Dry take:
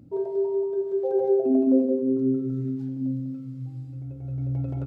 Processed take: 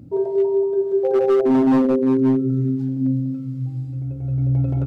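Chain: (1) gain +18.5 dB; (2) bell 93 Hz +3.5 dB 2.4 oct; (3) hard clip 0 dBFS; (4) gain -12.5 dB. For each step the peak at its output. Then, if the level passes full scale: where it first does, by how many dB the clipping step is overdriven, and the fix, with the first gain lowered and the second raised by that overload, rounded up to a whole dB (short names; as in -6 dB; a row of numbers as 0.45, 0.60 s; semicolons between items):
+8.5, +9.5, 0.0, -12.5 dBFS; step 1, 9.5 dB; step 1 +8.5 dB, step 4 -2.5 dB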